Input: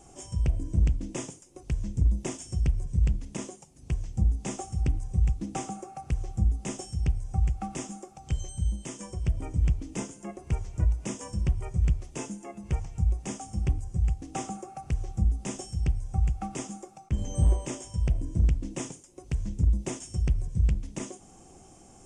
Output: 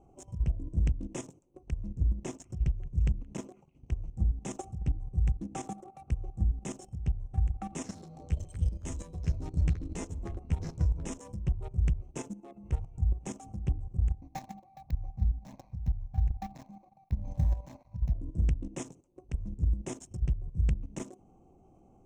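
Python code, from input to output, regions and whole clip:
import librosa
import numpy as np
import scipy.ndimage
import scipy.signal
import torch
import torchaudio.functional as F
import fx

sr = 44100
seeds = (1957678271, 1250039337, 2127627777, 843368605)

y = fx.chain(x, sr, fx.lowpass(hz=8300.0, slope=12),
    fx.echo_stepped(ms=172, hz=1900.0, octaves=0.7, feedback_pct=70, wet_db=-9), at=(1.88, 3.98))
y = fx.chain(y, sr, fx.echo_pitch(ms=81, semitones=-4, count=2, db_per_echo=-6.0),
    fx.doubler(ms=12.0, db=-3.5),
    fx.echo_single(ms=151, db=-16.0), at=(7.71, 11.18))
y = fx.chain(y, sr, fx.dead_time(dead_ms=0.16),
    fx.fixed_phaser(hz=2000.0, stages=8), at=(14.19, 18.15))
y = fx.wiener(y, sr, points=25)
y = fx.notch(y, sr, hz=4700.0, q=7.7)
y = fx.level_steps(y, sr, step_db=12)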